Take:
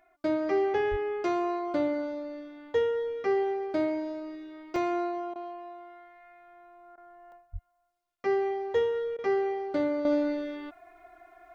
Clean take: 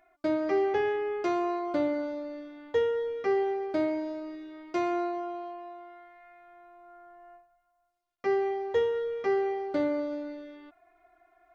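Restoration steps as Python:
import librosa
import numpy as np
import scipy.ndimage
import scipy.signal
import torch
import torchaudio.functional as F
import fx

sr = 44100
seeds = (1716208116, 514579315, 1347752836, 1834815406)

y = fx.highpass(x, sr, hz=140.0, slope=24, at=(0.9, 1.02), fade=0.02)
y = fx.highpass(y, sr, hz=140.0, slope=24, at=(7.52, 7.64), fade=0.02)
y = fx.fix_interpolate(y, sr, at_s=(4.76, 7.32), length_ms=1.7)
y = fx.fix_interpolate(y, sr, at_s=(5.34, 6.96, 9.17), length_ms=15.0)
y = fx.fix_level(y, sr, at_s=10.05, step_db=-9.5)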